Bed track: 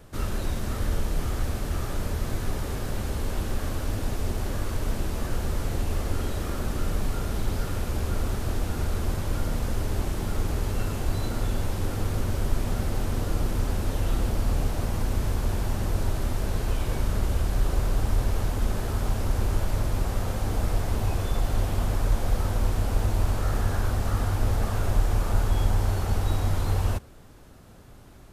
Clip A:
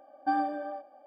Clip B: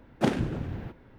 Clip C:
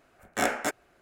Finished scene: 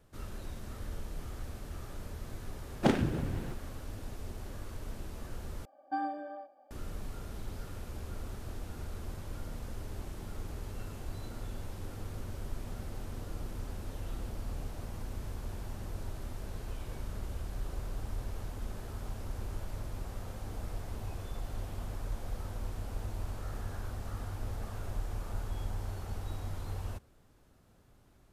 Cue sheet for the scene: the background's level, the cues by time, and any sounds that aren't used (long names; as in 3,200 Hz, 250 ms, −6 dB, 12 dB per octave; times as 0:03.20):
bed track −14 dB
0:02.62: mix in B −1.5 dB
0:05.65: overwrite with A −6.5 dB
not used: C